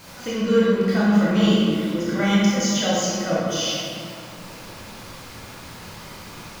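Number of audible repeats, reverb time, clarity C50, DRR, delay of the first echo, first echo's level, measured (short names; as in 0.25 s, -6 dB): none, 2.5 s, -3.0 dB, -7.5 dB, none, none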